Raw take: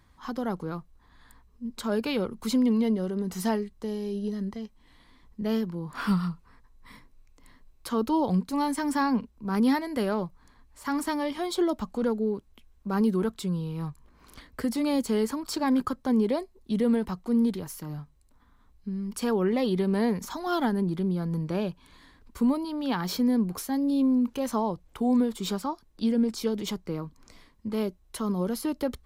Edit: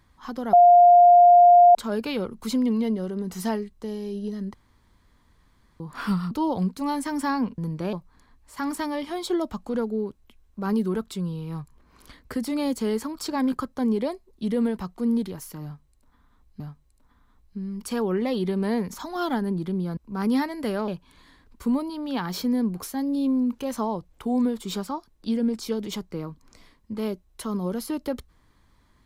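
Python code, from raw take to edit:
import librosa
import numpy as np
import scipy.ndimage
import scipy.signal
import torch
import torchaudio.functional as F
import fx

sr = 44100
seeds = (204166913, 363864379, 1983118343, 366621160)

y = fx.edit(x, sr, fx.bleep(start_s=0.53, length_s=1.22, hz=704.0, db=-9.5),
    fx.room_tone_fill(start_s=4.54, length_s=1.26),
    fx.cut(start_s=6.31, length_s=1.72),
    fx.swap(start_s=9.3, length_s=0.91, other_s=21.28, other_length_s=0.35),
    fx.repeat(start_s=17.91, length_s=0.97, count=2), tone=tone)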